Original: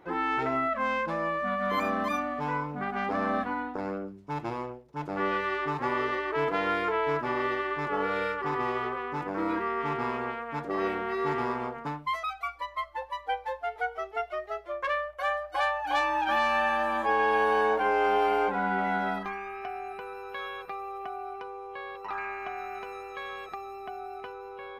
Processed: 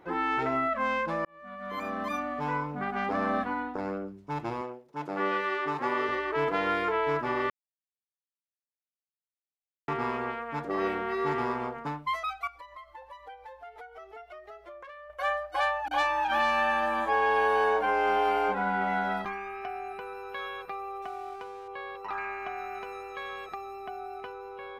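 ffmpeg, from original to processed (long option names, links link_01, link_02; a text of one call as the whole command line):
ffmpeg -i in.wav -filter_complex "[0:a]asettb=1/sr,asplit=3[link_01][link_02][link_03];[link_01]atrim=end=4.614[link_04];[link_02]atrim=start=4.61:end=6.09,asetpts=PTS-STARTPTS,afade=type=in:duration=0.004:curve=qsin,afade=type=out:start_time=1.476:duration=0.004:curve=qsin,highpass=190[link_05];[link_03]atrim=start=6.086[link_06];[link_04][link_05]acrossfade=duration=0.004:curve1=hsin:curve2=qsin[link_07];[link_07][link_06]acrossfade=duration=0.004:curve1=qsin:curve2=hsin,asettb=1/sr,asplit=3[link_08][link_09][link_10];[link_08]atrim=end=12.474[link_11];[link_09]atrim=start=12.47:end=15.1,asetpts=PTS-STARTPTS,afade=type=in:duration=0.004:curve=qsin,afade=type=out:start_time=2.626:duration=0.004:curve=qsin,acompressor=threshold=-42dB:ratio=12:attack=3.2:release=140:knee=1:detection=peak[link_12];[link_10]atrim=start=15.096[link_13];[link_11][link_12]acrossfade=duration=0.004:curve1=hsin:curve2=qsin[link_14];[link_14][link_13]acrossfade=duration=0.004:curve1=qsin:curve2=hsin,asettb=1/sr,asplit=3[link_15][link_16][link_17];[link_15]atrim=end=15.884[link_18];[link_16]atrim=start=15.88:end=19.25,asetpts=PTS-STARTPTS,afade=type=in:duration=0.004:curve=qsin,afade=type=out:start_time=3.366:duration=0.004:curve=qsin,acrossover=split=270[link_19][link_20];[link_20]adelay=30[link_21];[link_19][link_21]amix=inputs=2:normalize=0,atrim=end_sample=148617[link_22];[link_17]atrim=start=19.246[link_23];[link_18][link_22]acrossfade=duration=0.004:curve1=hsin:curve2=qsin[link_24];[link_24][link_23]acrossfade=duration=0.004:curve1=qsin:curve2=hsin,asettb=1/sr,asplit=3[link_25][link_26][link_27];[link_25]atrim=end=21.024[link_28];[link_26]atrim=start=21.02:end=21.68,asetpts=PTS-STARTPTS,afade=type=in:duration=0.004:curve=qsin,afade=type=out:start_time=0.656:duration=0.004:curve=qsin,aeval=exprs='sgn(val(0))*max(abs(val(0))-0.002,0)':channel_layout=same[link_29];[link_27]atrim=start=21.676[link_30];[link_28][link_29]acrossfade=duration=0.004:curve1=hsin:curve2=qsin[link_31];[link_31][link_30]acrossfade=duration=0.004:curve1=qsin:curve2=hsin,asplit=4[link_32][link_33][link_34][link_35];[link_32]atrim=end=1.25,asetpts=PTS-STARTPTS,afade=type=out:start_time=1.246:duration=0.004:curve=hsin[link_36];[link_33]atrim=start=1.25:end=7.5,asetpts=PTS-STARTPTS,afade=type=in:duration=1.22,afade=type=out:start_time=6.246:duration=0.004:curve=hsin[link_37];[link_34]atrim=start=7.5:end=9.88,asetpts=PTS-STARTPTS,volume=0[link_38];[link_35]atrim=start=9.88,asetpts=PTS-STARTPTS,afade=type=in:duration=0.004:curve=hsin[link_39];[link_36][link_37][link_38][link_39]concat=n=4:v=0:a=1" out.wav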